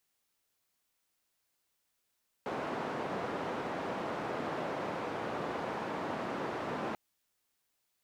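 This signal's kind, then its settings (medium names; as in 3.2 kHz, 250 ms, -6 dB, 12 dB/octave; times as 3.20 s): noise band 170–890 Hz, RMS -37 dBFS 4.49 s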